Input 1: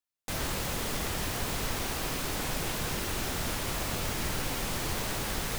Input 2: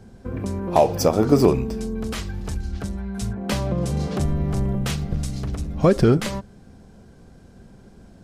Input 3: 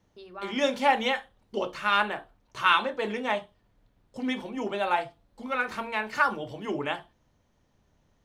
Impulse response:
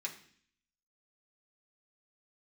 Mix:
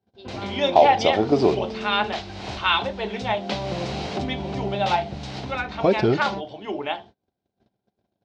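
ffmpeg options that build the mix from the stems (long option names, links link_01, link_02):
-filter_complex "[0:a]bandreject=frequency=3500:width=12,volume=2dB[link_01];[1:a]volume=-1dB[link_02];[2:a]volume=2.5dB,asplit=2[link_03][link_04];[link_04]apad=whole_len=246241[link_05];[link_01][link_05]sidechaincompress=threshold=-46dB:ratio=3:attack=34:release=246[link_06];[link_06][link_02][link_03]amix=inputs=3:normalize=0,bandreject=frequency=490:width=12,agate=range=-29dB:threshold=-43dB:ratio=16:detection=peak,highpass=130,equalizer=frequency=160:width_type=q:width=4:gain=-10,equalizer=frequency=250:width_type=q:width=4:gain=-5,equalizer=frequency=740:width_type=q:width=4:gain=6,equalizer=frequency=1200:width_type=q:width=4:gain=-6,equalizer=frequency=1700:width_type=q:width=4:gain=-5,equalizer=frequency=3700:width_type=q:width=4:gain=5,lowpass=frequency=5000:width=0.5412,lowpass=frequency=5000:width=1.3066"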